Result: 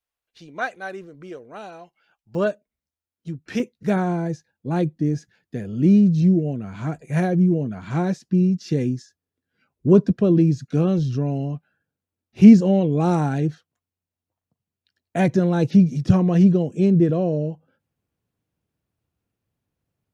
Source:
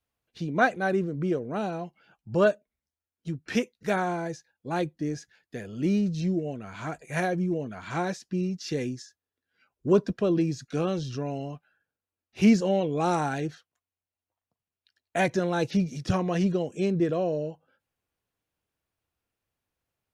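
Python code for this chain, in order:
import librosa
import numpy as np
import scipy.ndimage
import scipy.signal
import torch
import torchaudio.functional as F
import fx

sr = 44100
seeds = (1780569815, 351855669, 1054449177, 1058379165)

y = fx.peak_eq(x, sr, hz=150.0, db=fx.steps((0.0, -13.0), (2.35, 4.0), (3.6, 14.0)), octaves=2.9)
y = F.gain(torch.from_numpy(y), -2.0).numpy()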